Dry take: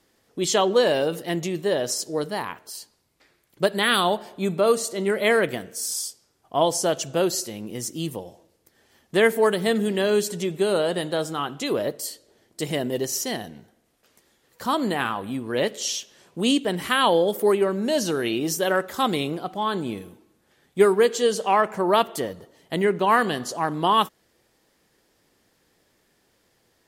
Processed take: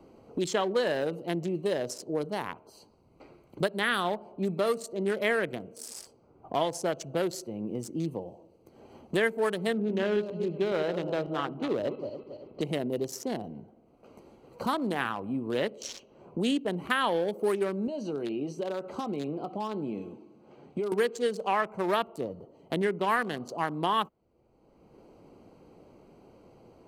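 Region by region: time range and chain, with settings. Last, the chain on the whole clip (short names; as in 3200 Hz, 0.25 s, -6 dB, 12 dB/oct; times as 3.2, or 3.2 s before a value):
9.75–12.61 regenerating reverse delay 0.138 s, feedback 45%, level -8 dB + LPF 3200 Hz 24 dB/oct
17.87–20.92 compressor 3:1, threshold -30 dBFS + BPF 130–6700 Hz + doubler 14 ms -11 dB
whole clip: Wiener smoothing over 25 samples; dynamic EQ 1700 Hz, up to +5 dB, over -37 dBFS, Q 1.9; three-band squash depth 70%; gain -6.5 dB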